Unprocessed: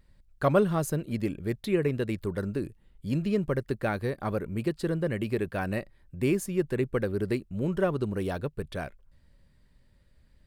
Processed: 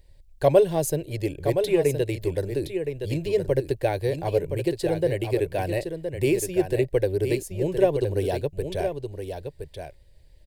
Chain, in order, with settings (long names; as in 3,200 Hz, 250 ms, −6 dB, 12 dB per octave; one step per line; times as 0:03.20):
phaser with its sweep stopped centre 530 Hz, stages 4
on a send: single-tap delay 1,018 ms −7.5 dB
on the sum: level +7.5 dB